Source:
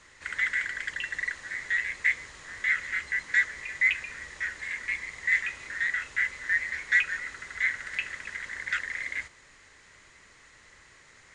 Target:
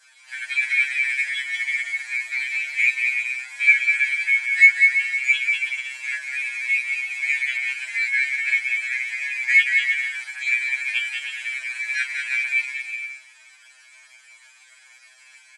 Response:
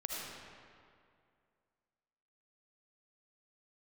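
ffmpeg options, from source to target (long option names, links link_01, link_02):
-af "highpass=1100,aecho=1:1:1.4:0.66,adynamicequalizer=threshold=0.0158:dfrequency=2100:dqfactor=1.8:tfrequency=2100:tqfactor=1.8:attack=5:release=100:ratio=0.375:range=1.5:mode=boostabove:tftype=bell,aecho=1:1:140|238|306.6|354.6|388.2:0.631|0.398|0.251|0.158|0.1,asetrate=49392,aresample=44100,acontrast=32,atempo=0.65,afftfilt=real='re*2.45*eq(mod(b,6),0)':imag='im*2.45*eq(mod(b,6),0)':win_size=2048:overlap=0.75"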